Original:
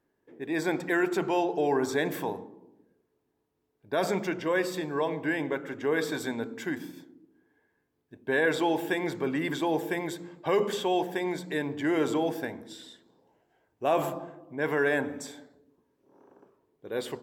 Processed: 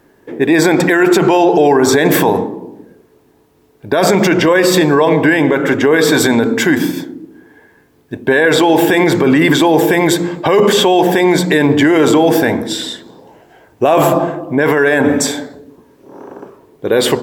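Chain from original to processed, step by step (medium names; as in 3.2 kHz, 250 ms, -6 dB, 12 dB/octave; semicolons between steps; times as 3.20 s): loudness maximiser +26.5 dB; trim -1 dB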